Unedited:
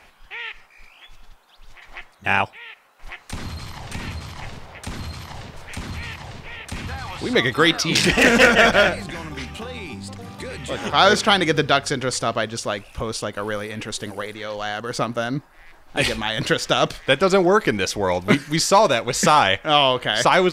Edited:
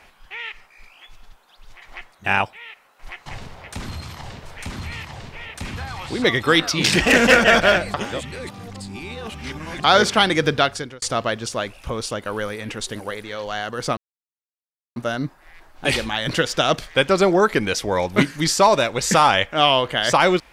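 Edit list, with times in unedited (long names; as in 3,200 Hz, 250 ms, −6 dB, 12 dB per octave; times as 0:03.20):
0:03.26–0:04.37: remove
0:09.05–0:10.95: reverse
0:11.72–0:12.13: fade out linear
0:15.08: splice in silence 0.99 s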